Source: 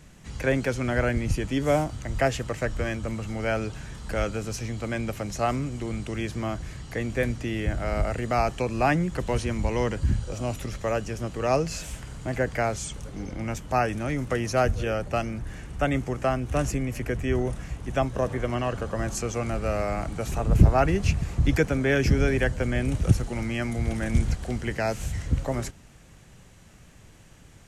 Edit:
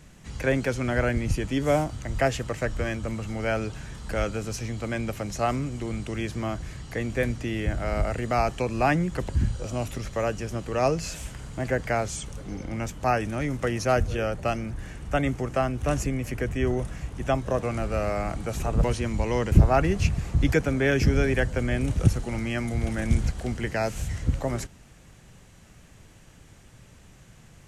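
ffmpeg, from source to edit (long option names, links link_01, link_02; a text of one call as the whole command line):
ffmpeg -i in.wav -filter_complex "[0:a]asplit=5[link_01][link_02][link_03][link_04][link_05];[link_01]atrim=end=9.292[link_06];[link_02]atrim=start=9.968:end=18.312[link_07];[link_03]atrim=start=19.348:end=20.562[link_08];[link_04]atrim=start=9.288:end=9.972[link_09];[link_05]atrim=start=20.558[link_10];[link_06][link_07]acrossfade=duration=0.004:curve1=hsin:curve2=hsin[link_11];[link_11][link_08]acrossfade=duration=0.004:curve1=hsin:curve2=hsin[link_12];[link_12][link_09]acrossfade=duration=0.004:curve1=hsin:curve2=hsin[link_13];[link_13][link_10]acrossfade=duration=0.004:curve1=hsin:curve2=hsin" out.wav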